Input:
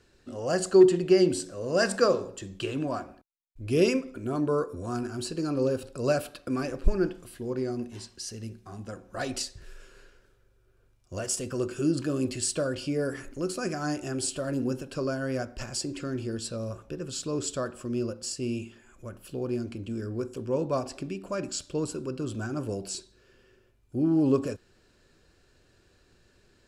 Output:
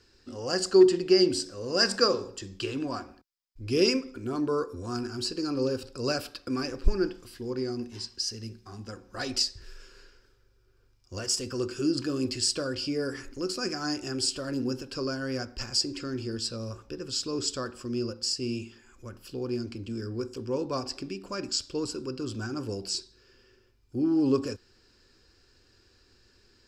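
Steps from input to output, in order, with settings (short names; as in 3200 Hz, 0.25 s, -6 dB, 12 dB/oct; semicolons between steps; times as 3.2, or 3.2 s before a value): thirty-one-band EQ 160 Hz -11 dB, 630 Hz -10 dB, 5000 Hz +12 dB, 10000 Hz -7 dB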